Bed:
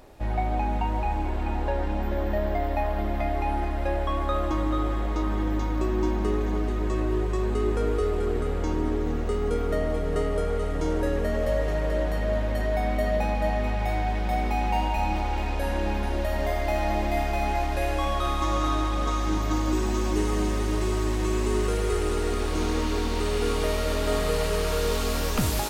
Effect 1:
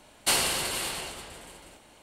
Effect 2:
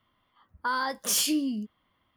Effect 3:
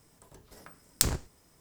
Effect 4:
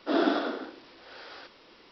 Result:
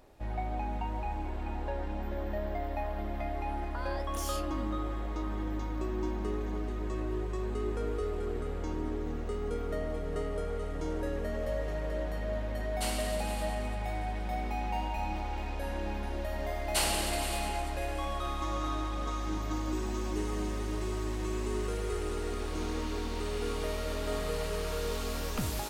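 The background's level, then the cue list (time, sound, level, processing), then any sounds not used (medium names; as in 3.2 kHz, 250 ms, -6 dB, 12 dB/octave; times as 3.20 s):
bed -8.5 dB
3.10 s: add 2 -1.5 dB + compression 3:1, threshold -42 dBFS
12.54 s: add 1 -13 dB
16.48 s: add 1 -6 dB
not used: 3, 4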